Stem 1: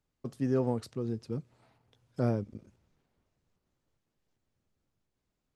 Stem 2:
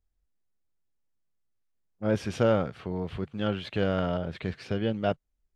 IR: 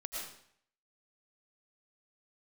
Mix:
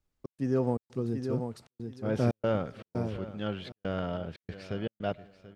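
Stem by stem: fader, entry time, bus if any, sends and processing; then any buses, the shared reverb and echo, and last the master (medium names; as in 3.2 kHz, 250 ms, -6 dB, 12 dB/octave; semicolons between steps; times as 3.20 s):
-2.5 dB, 0.00 s, send -23.5 dB, echo send -6 dB, level rider gain up to 4 dB
-5.5 dB, 0.00 s, send -22 dB, echo send -15.5 dB, none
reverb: on, RT60 0.65 s, pre-delay 70 ms
echo: feedback delay 735 ms, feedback 21%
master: trance gate "xx.xxx.xxxxxx.xx" 117 bpm -60 dB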